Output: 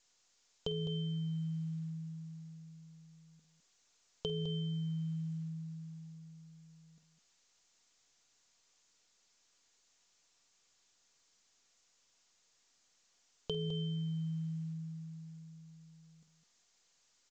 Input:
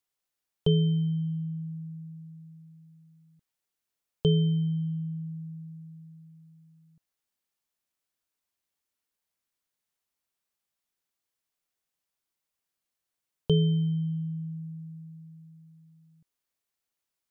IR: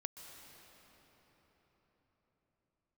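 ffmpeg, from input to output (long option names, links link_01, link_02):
-af "bass=frequency=250:gain=-8,treble=frequency=4000:gain=13,aecho=1:1:4.2:0.52,adynamicequalizer=threshold=0.00251:dfrequency=1100:dqfactor=1.9:tfrequency=1100:tqfactor=1.9:attack=5:release=100:ratio=0.375:range=3:mode=boostabove:tftype=bell,aecho=1:1:49.56|207:0.355|0.316,alimiter=level_in=1.5dB:limit=-24dB:level=0:latency=1:release=11,volume=-1.5dB,acompressor=threshold=-39dB:ratio=6,volume=4dB" -ar 16000 -c:a pcm_mulaw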